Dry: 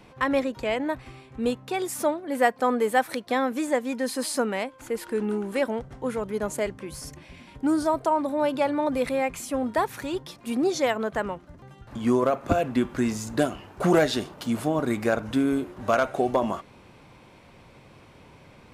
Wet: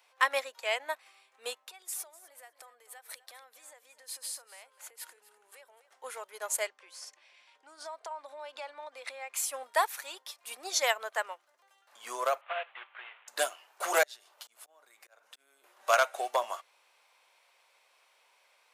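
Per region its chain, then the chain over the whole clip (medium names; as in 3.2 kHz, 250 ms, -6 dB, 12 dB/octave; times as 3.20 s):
1.59–5.91 s: compression 16:1, threshold -36 dBFS + feedback delay 250 ms, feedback 16%, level -12.5 dB
6.67–9.34 s: low-pass 5.9 kHz + compression 16:1, threshold -27 dBFS
12.41–13.28 s: CVSD coder 16 kbps + high-pass 780 Hz
14.03–15.64 s: slow attack 418 ms + compression 4:1, threshold -39 dBFS
whole clip: high-pass 560 Hz 24 dB/octave; tilt EQ +3 dB/octave; upward expansion 1.5:1, over -47 dBFS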